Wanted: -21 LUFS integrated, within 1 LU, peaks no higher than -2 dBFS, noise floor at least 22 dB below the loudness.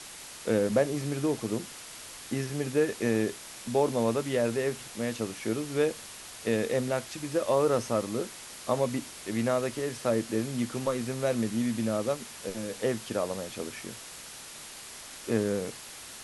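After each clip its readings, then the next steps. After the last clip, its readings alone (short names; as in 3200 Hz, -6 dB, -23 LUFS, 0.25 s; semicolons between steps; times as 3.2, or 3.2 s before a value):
noise floor -45 dBFS; noise floor target -52 dBFS; loudness -30.0 LUFS; peak -12.0 dBFS; loudness target -21.0 LUFS
-> denoiser 7 dB, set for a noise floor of -45 dBFS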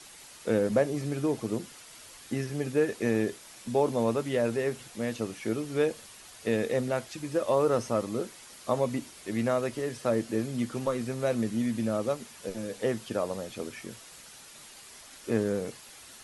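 noise floor -50 dBFS; noise floor target -53 dBFS
-> denoiser 6 dB, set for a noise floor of -50 dBFS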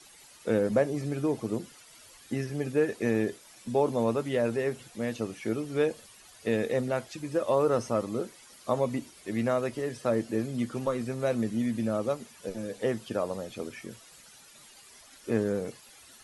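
noise floor -54 dBFS; loudness -30.5 LUFS; peak -12.5 dBFS; loudness target -21.0 LUFS
-> gain +9.5 dB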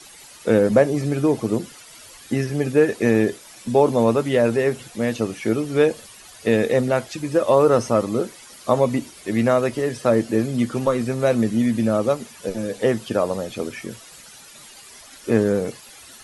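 loudness -21.0 LUFS; peak -3.0 dBFS; noise floor -45 dBFS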